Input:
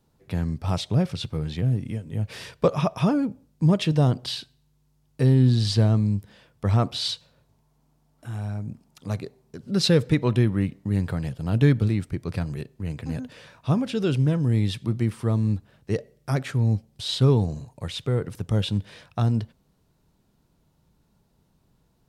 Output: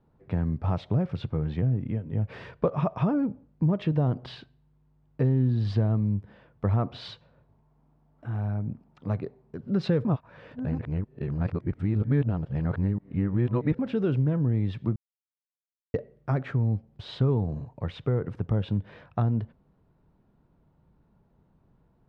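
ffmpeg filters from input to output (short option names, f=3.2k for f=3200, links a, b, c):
-filter_complex "[0:a]asplit=5[a][b][c][d][e];[a]atrim=end=10.052[f];[b]atrim=start=10.048:end=13.792,asetpts=PTS-STARTPTS,areverse[g];[c]atrim=start=13.788:end=14.96,asetpts=PTS-STARTPTS,afade=t=out:st=1.168:d=0.004:c=hsin[h];[d]atrim=start=14.96:end=15.94,asetpts=PTS-STARTPTS,volume=0[i];[e]atrim=start=15.94,asetpts=PTS-STARTPTS,afade=t=in:d=0.004:c=hsin[j];[f][g]acrossfade=d=0.004:c1=hsin:c2=hsin[k];[h][i][j]concat=n=3:v=0:a=1[l];[k][l]acrossfade=d=0.004:c1=hsin:c2=hsin,lowpass=1.6k,acompressor=threshold=-24dB:ratio=3,volume=1.5dB"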